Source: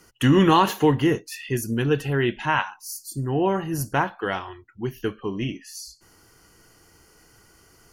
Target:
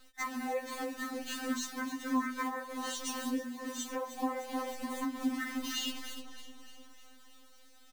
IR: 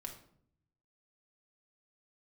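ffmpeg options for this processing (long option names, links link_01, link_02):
-filter_complex "[0:a]alimiter=limit=-12.5dB:level=0:latency=1:release=188,dynaudnorm=framelen=390:gausssize=9:maxgain=5dB,asplit=2[link_01][link_02];[link_02]equalizer=frequency=800:width=3.8:gain=-2.5[link_03];[1:a]atrim=start_sample=2205[link_04];[link_03][link_04]afir=irnorm=-1:irlink=0,volume=-12dB[link_05];[link_01][link_05]amix=inputs=2:normalize=0,asetrate=27781,aresample=44100,atempo=1.5874,highpass=290,highshelf=frequency=4300:gain=-5,bandreject=frequency=50:width_type=h:width=6,bandreject=frequency=100:width_type=h:width=6,bandreject=frequency=150:width_type=h:width=6,bandreject=frequency=200:width_type=h:width=6,bandreject=frequency=250:width_type=h:width=6,bandreject=frequency=300:width_type=h:width=6,bandreject=frequency=350:width_type=h:width=6,bandreject=frequency=400:width_type=h:width=6,bandreject=frequency=450:width_type=h:width=6,aecho=1:1:307|614|921|1228|1535|1842:0.316|0.177|0.0992|0.0555|0.0311|0.0174,acrusher=bits=7:dc=4:mix=0:aa=0.000001,acompressor=threshold=-29dB:ratio=12,afftfilt=real='re*3.46*eq(mod(b,12),0)':imag='im*3.46*eq(mod(b,12),0)':win_size=2048:overlap=0.75"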